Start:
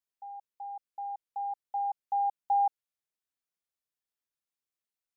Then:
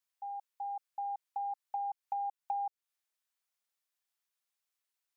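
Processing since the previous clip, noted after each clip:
downward compressor 6 to 1, threshold −37 dBFS, peak gain reduction 12.5 dB
high-pass filter 720 Hz 12 dB per octave
level +4.5 dB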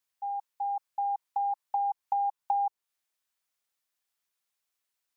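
dynamic equaliser 970 Hz, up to +7 dB, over −51 dBFS, Q 2.3
level +3.5 dB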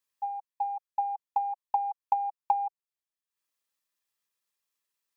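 transient designer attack +8 dB, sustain −11 dB
notch comb filter 740 Hz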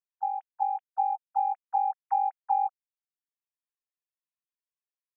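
three sine waves on the formant tracks
level +2.5 dB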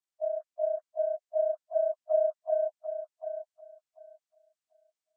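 partials spread apart or drawn together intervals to 80%
feedback echo with a high-pass in the loop 741 ms, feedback 25%, high-pass 700 Hz, level −6 dB

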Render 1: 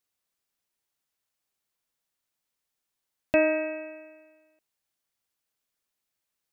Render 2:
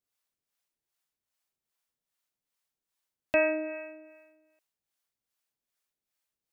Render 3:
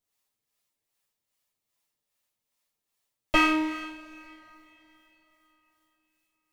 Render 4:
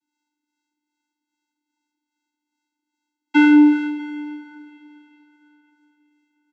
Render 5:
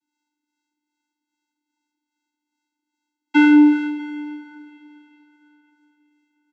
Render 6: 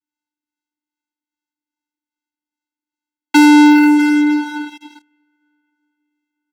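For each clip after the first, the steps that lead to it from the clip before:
two-band tremolo in antiphase 2.5 Hz, depth 70%, crossover 530 Hz
lower of the sound and its delayed copy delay 8.8 ms; notch filter 1,500 Hz, Q 9.7; coupled-rooms reverb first 0.37 s, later 4.1 s, from −17 dB, DRR 9 dB; level +6 dB
in parallel at +2 dB: brickwall limiter −21.5 dBFS, peak gain reduction 11.5 dB; on the sum: channel vocoder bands 16, square 297 Hz; single-tap delay 644 ms −21.5 dB; level +8.5 dB
no processing that can be heard
parametric band 1,600 Hz +3.5 dB 0.33 octaves; leveller curve on the samples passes 5

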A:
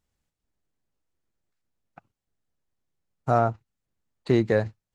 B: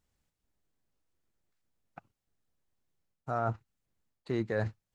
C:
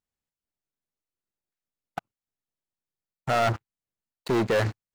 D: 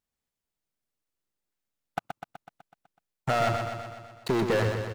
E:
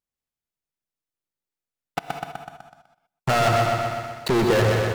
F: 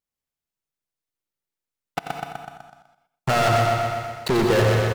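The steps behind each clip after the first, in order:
dynamic equaliser 1,400 Hz, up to +5 dB, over −39 dBFS, Q 1.5; reversed playback; downward compressor 5 to 1, threshold −29 dBFS, peak gain reduction 13.5 dB; reversed playback
leveller curve on the samples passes 5; low-shelf EQ 140 Hz −8 dB
downward compressor, threshold −25 dBFS, peak gain reduction 5.5 dB; on a send: repeating echo 125 ms, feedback 60%, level −6 dB; on the sum: level +2 dB
leveller curve on the samples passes 3; reverb whose tail is shaped and stops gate 220 ms rising, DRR 5.5 dB
single-tap delay 89 ms −9 dB

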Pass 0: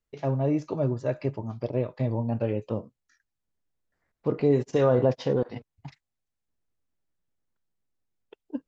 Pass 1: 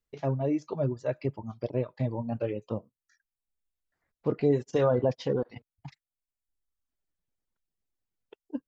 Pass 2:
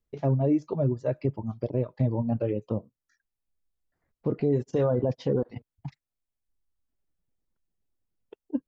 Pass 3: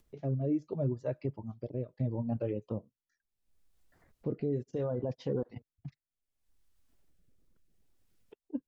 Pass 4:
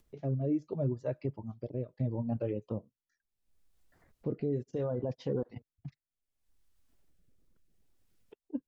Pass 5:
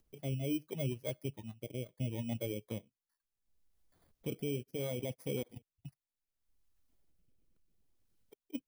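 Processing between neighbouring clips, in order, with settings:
reverb reduction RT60 1.2 s; level −1.5 dB
tilt shelving filter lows +5.5 dB, about 770 Hz; brickwall limiter −18 dBFS, peak gain reduction 7 dB; level +1.5 dB
upward compression, threshold −44 dBFS; rotating-speaker cabinet horn 0.7 Hz; level −6 dB
no processing that can be heard
samples in bit-reversed order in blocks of 16 samples; level −4.5 dB

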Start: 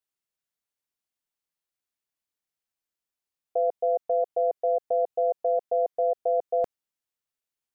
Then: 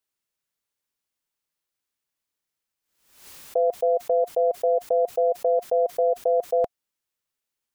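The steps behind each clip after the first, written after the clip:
notch filter 710 Hz, Q 12
background raised ahead of every attack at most 86 dB per second
level +4.5 dB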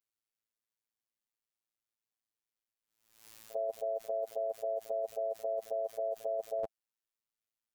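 echo ahead of the sound 48 ms −18 dB
phases set to zero 111 Hz
level −8.5 dB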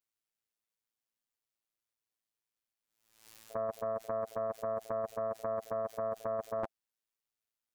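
highs frequency-modulated by the lows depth 0.79 ms

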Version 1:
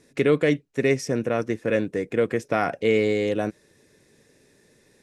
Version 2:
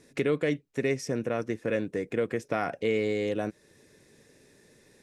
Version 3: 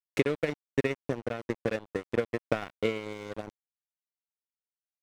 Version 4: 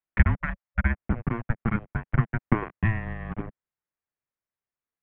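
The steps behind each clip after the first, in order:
downward compressor 1.5 to 1, threshold −35 dBFS, peak gain reduction 7.5 dB
transient designer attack +10 dB, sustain −8 dB; dead-zone distortion −30 dBFS; level −4.5 dB
gain on a spectral selection 0:00.41–0:00.85, 320–890 Hz −17 dB; single-sideband voice off tune −340 Hz 160–2,600 Hz; level +6.5 dB

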